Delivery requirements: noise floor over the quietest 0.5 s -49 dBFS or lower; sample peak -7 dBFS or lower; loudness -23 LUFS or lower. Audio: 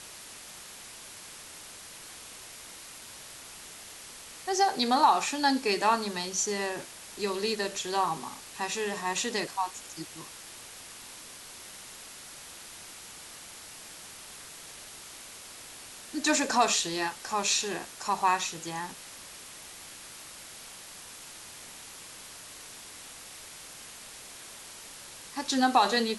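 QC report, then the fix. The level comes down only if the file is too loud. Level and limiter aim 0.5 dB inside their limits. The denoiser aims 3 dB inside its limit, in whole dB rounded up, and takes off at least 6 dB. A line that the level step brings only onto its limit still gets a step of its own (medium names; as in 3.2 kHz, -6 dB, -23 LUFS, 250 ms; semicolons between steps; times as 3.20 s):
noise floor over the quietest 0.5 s -46 dBFS: fail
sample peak -11.0 dBFS: pass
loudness -28.5 LUFS: pass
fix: noise reduction 6 dB, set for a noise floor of -46 dBFS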